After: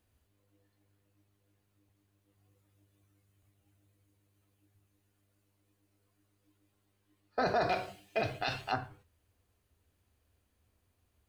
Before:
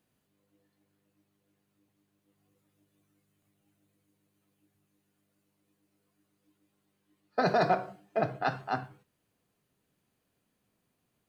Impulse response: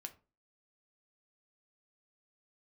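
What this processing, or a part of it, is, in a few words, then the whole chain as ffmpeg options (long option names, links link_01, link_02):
car stereo with a boomy subwoofer: -filter_complex "[0:a]asettb=1/sr,asplit=3[link_01][link_02][link_03];[link_01]atrim=end=7.694[link_04];[link_02]atrim=start=7.69:end=8.72,asetpts=PTS-STARTPTS,afade=type=in:duration=0.004:curve=qsin,afade=type=out:start_time=1.026:duration=0.004:curve=qsin,highshelf=frequency=1900:width_type=q:width=1.5:gain=11[link_05];[link_03]atrim=start=8.716[link_06];[link_04][link_05]acrossfade=duration=0.004:curve1=hsin:curve2=qsin[link_07];[link_07][link_06]acrossfade=duration=0.004:curve1=qsin:curve2=hsin,lowshelf=frequency=110:width_type=q:width=3:gain=11,alimiter=limit=-20.5dB:level=0:latency=1:release=33"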